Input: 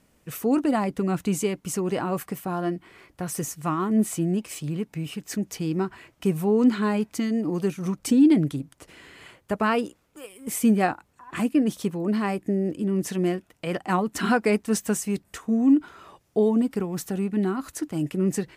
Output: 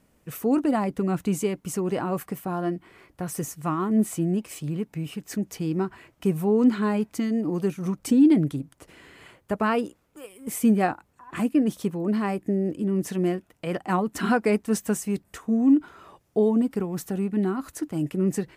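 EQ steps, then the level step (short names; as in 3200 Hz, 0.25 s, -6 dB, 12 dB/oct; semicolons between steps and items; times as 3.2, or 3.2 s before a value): bell 4700 Hz -4 dB 2.8 oct; 0.0 dB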